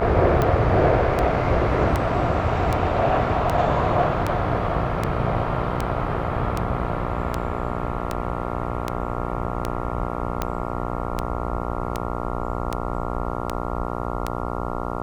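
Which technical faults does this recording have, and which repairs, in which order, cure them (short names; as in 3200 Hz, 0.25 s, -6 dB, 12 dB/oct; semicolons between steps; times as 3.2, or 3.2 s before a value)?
buzz 60 Hz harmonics 23 -28 dBFS
tick 78 rpm -9 dBFS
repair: de-click; de-hum 60 Hz, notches 23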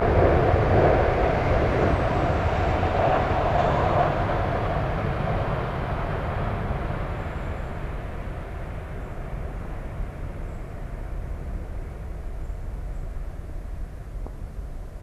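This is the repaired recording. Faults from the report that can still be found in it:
none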